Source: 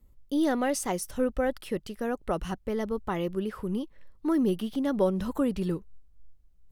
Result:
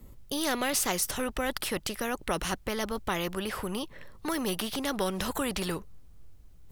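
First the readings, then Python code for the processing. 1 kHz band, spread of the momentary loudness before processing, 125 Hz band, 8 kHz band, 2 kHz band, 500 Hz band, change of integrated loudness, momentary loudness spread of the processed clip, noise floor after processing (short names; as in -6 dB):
+1.0 dB, 8 LU, -3.5 dB, +7.5 dB, +5.5 dB, -4.0 dB, -1.5 dB, 8 LU, -51 dBFS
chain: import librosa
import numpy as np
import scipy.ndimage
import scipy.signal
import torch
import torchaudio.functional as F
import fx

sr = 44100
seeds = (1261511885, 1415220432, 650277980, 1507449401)

y = fx.spectral_comp(x, sr, ratio=2.0)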